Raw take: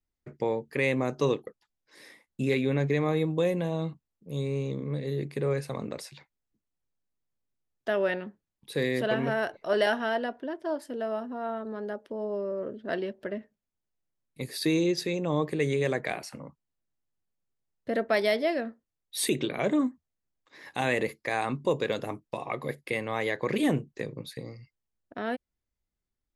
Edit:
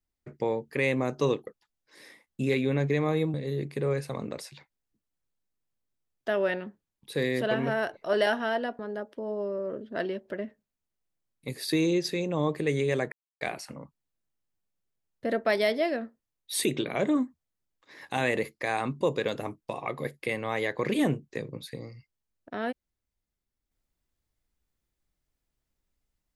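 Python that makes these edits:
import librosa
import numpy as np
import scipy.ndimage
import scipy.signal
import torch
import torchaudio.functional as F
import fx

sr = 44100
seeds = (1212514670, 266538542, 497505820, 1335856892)

y = fx.edit(x, sr, fx.cut(start_s=3.34, length_s=1.6),
    fx.cut(start_s=10.39, length_s=1.33),
    fx.insert_silence(at_s=16.05, length_s=0.29), tone=tone)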